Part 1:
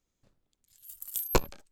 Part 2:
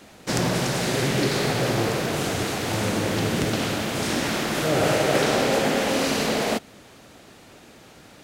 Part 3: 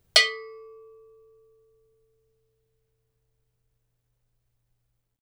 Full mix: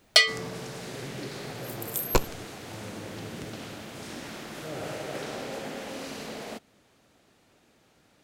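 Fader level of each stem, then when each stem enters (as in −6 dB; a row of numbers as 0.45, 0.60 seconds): +2.0, −15.0, −0.5 decibels; 0.80, 0.00, 0.00 seconds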